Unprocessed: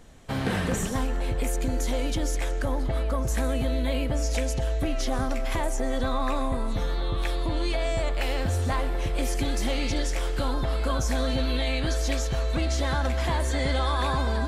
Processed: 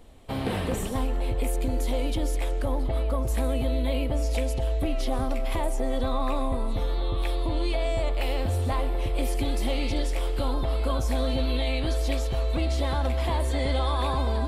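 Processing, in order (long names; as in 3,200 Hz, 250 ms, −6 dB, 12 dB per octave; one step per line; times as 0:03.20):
graphic EQ with 15 bands 160 Hz −8 dB, 1,600 Hz −9 dB, 6,300 Hz −11 dB
level +1 dB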